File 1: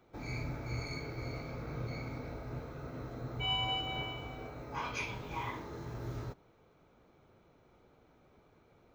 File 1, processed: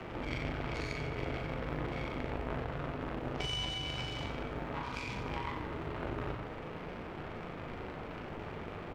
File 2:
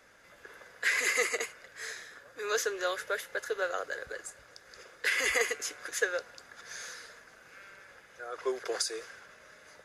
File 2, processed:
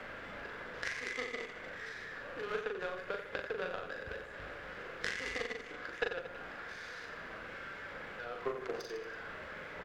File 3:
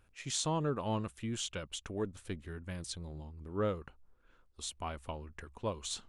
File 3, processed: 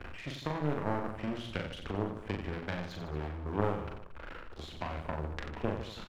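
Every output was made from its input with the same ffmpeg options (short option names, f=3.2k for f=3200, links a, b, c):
-filter_complex "[0:a]aeval=exprs='val(0)+0.5*0.0188*sgn(val(0))':c=same,acrossover=split=120|240|4300[a][b][c][d];[a]acompressor=threshold=-41dB:ratio=4[e];[b]acompressor=threshold=-46dB:ratio=4[f];[c]acompressor=threshold=-40dB:ratio=4[g];[d]acompressor=threshold=-50dB:ratio=4[h];[e][f][g][h]amix=inputs=4:normalize=0,highshelf=f=6.1k:g=-11.5,afwtdn=0.00316,acontrast=89,aeval=exprs='0.119*(cos(1*acos(clip(val(0)/0.119,-1,1)))-cos(1*PI/2))+0.00668*(cos(2*acos(clip(val(0)/0.119,-1,1)))-cos(2*PI/2))+0.0335*(cos(3*acos(clip(val(0)/0.119,-1,1)))-cos(3*PI/2))+0.00075*(cos(8*acos(clip(val(0)/0.119,-1,1)))-cos(8*PI/2))':c=same,bandreject=f=60:t=h:w=6,bandreject=f=120:t=h:w=6,aecho=1:1:40|90|152.5|230.6|328.3:0.631|0.398|0.251|0.158|0.1,volume=2dB"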